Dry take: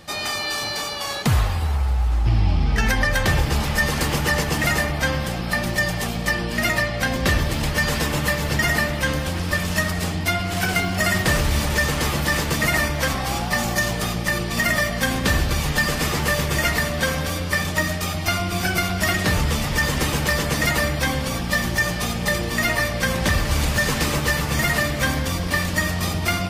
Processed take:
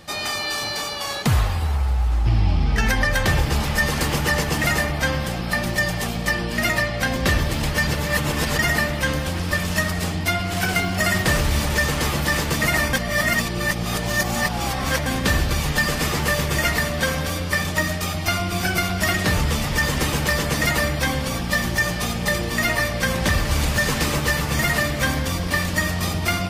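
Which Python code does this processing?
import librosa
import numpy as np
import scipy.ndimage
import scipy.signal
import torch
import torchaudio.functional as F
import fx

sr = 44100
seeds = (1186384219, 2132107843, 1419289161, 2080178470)

y = fx.edit(x, sr, fx.reverse_span(start_s=7.87, length_s=0.71),
    fx.reverse_span(start_s=12.93, length_s=2.13), tone=tone)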